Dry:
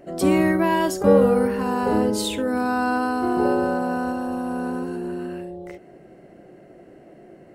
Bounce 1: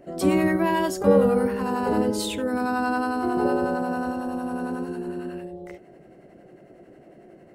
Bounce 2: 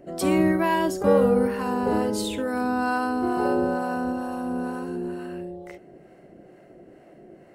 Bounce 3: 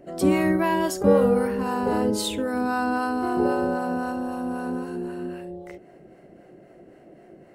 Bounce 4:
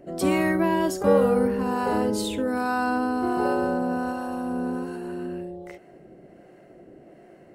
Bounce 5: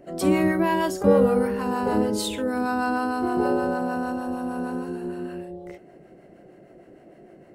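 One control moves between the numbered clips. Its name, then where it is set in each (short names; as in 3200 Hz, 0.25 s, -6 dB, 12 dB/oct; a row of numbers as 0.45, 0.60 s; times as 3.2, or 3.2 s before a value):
harmonic tremolo, rate: 11, 2.2, 3.8, 1.3, 6.5 Hz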